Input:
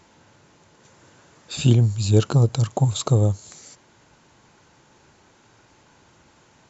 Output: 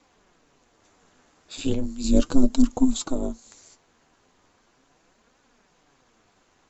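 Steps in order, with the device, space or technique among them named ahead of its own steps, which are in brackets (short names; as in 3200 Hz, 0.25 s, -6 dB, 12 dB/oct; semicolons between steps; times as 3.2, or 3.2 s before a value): HPF 90 Hz; 2.04–3.05 tone controls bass +10 dB, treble +6 dB; alien voice (ring modulator 130 Hz; flange 0.37 Hz, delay 3.3 ms, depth 10 ms, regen +46%)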